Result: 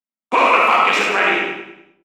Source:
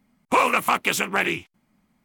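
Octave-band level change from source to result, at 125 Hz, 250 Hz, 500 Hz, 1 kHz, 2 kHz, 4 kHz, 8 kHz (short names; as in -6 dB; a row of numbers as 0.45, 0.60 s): n/a, +3.0 dB, +7.0 dB, +8.0 dB, +7.5 dB, +7.0 dB, -3.5 dB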